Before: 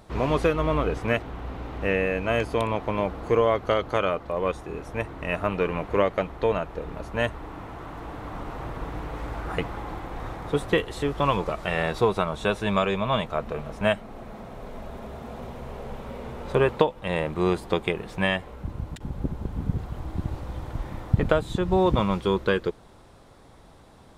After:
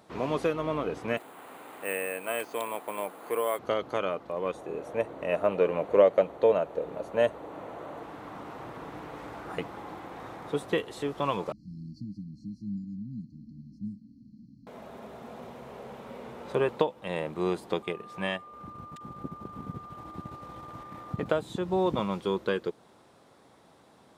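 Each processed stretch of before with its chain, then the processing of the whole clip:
1.17–3.59 weighting filter A + careless resampling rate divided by 4×, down filtered, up hold
4.54–8.03 bell 550 Hz +10.5 dB 0.72 oct + notch 5200 Hz, Q 7.1
11.52–14.67 brick-wall FIR band-stop 310–4100 Hz + air absorption 270 m
17.82–21.26 transient shaper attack -3 dB, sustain -7 dB + whine 1200 Hz -39 dBFS
whole clip: HPF 170 Hz 12 dB/oct; dynamic EQ 1800 Hz, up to -3 dB, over -39 dBFS, Q 0.76; gain -4.5 dB

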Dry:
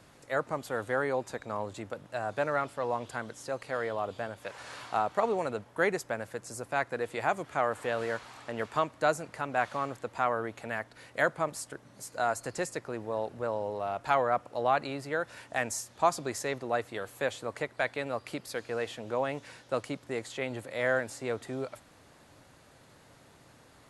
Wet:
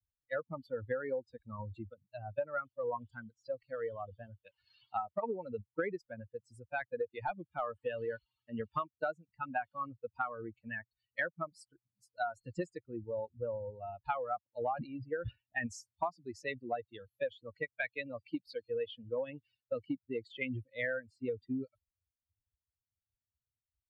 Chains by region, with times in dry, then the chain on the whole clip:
6.69–8.28 expander -48 dBFS + hard clip -17.5 dBFS
14.62–15.67 air absorption 180 m + sustainer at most 100 dB/s
whole clip: per-bin expansion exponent 3; LPF 2300 Hz 12 dB/oct; compressor 16:1, threshold -44 dBFS; gain +12 dB

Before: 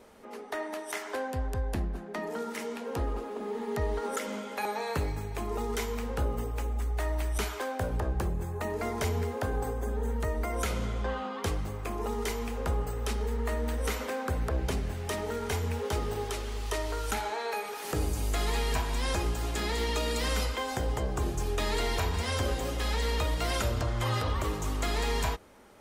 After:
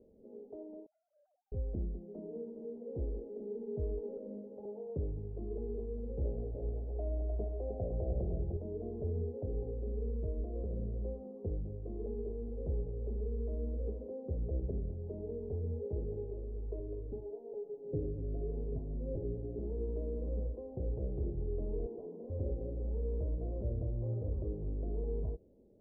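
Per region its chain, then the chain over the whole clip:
0.86–1.52 sine-wave speech + Butterworth band-pass 1900 Hz, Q 1.9
6.24–8.57 bell 680 Hz +14.5 dB 0.33 oct + echo 0.304 s -4.5 dB
16.79–19.59 band shelf 1600 Hz -9 dB 2.5 oct + comb 7.4 ms, depth 87%
21.86–22.3 steep high-pass 200 Hz + hard clip -28.5 dBFS
whole clip: steep low-pass 530 Hz 36 dB/oct; dynamic EQ 260 Hz, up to -4 dB, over -51 dBFS, Q 3.6; gain -5 dB

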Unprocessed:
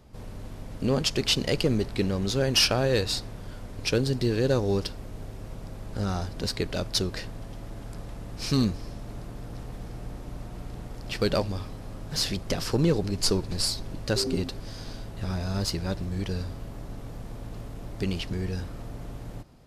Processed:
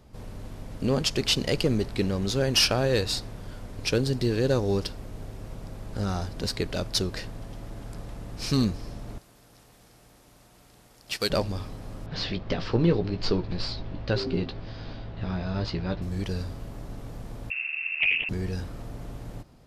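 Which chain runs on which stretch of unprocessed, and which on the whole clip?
9.18–11.3 tilt +3 dB/oct + upward expander, over -44 dBFS
12.06–16.02 LPF 4000 Hz 24 dB/oct + doubler 17 ms -8 dB
17.5–18.29 tilt shelf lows +4.5 dB, about 940 Hz + inverted band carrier 2700 Hz + Doppler distortion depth 0.26 ms
whole clip: dry

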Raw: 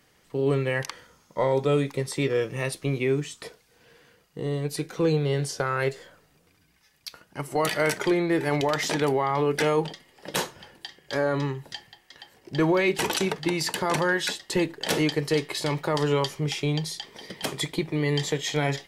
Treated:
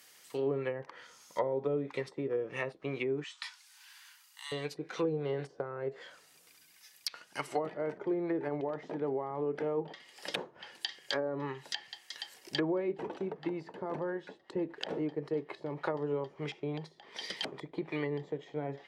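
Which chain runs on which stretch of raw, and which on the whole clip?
3.24–4.52 Chebyshev high-pass 810 Hz, order 8 + doubler 20 ms -14 dB
whole clip: tilt +3.5 dB/oct; treble ducked by the level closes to 460 Hz, closed at -23 dBFS; low shelf 120 Hz -9 dB; gain -1.5 dB

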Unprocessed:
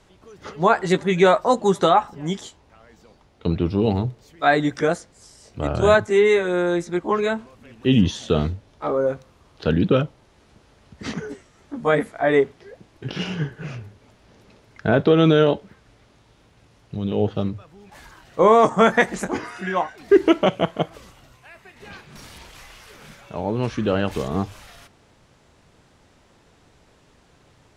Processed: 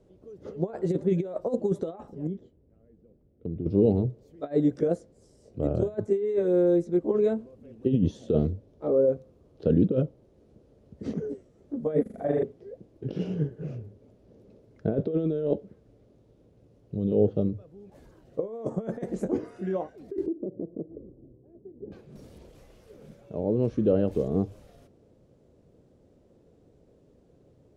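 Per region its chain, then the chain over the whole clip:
2.27–3.66 Chebyshev low-pass 1500 Hz + bell 950 Hz -14.5 dB 1.8 oct + compressor, threshold -26 dBFS
12.02–12.43 notches 60/120/180/240/300/360/420/480/540/600 Hz + AM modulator 21 Hz, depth 70% + flutter echo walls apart 6.9 m, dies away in 1.3 s
20.26–21.92 synth low-pass 350 Hz, resonance Q 2.8 + compressor 5:1, threshold -30 dBFS
whole clip: tilt +2 dB/oct; negative-ratio compressor -21 dBFS, ratio -0.5; EQ curve 520 Hz 0 dB, 890 Hz -20 dB, 1900 Hz -27 dB

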